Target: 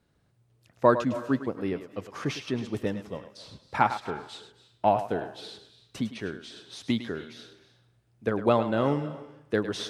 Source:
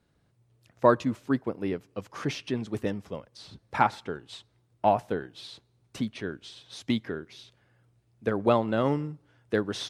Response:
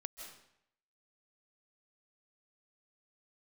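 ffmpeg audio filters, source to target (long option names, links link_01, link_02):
-filter_complex "[0:a]asplit=2[link_01][link_02];[link_02]lowshelf=frequency=200:gain=-11.5[link_03];[1:a]atrim=start_sample=2205,adelay=104[link_04];[link_03][link_04]afir=irnorm=-1:irlink=0,volume=-6dB[link_05];[link_01][link_05]amix=inputs=2:normalize=0"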